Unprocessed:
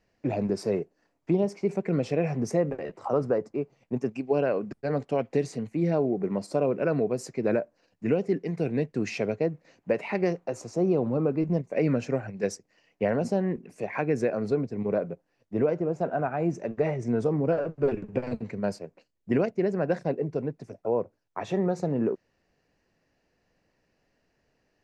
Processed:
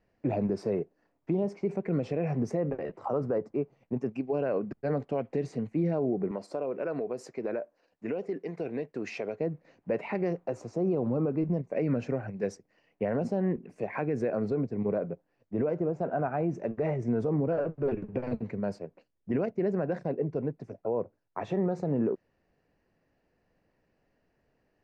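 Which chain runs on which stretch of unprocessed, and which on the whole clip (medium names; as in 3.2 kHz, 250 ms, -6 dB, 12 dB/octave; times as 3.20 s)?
6.31–9.40 s: tone controls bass -13 dB, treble +2 dB + compression 4:1, threshold -28 dBFS
whole clip: low-pass 1.7 kHz 6 dB/octave; peak limiter -20 dBFS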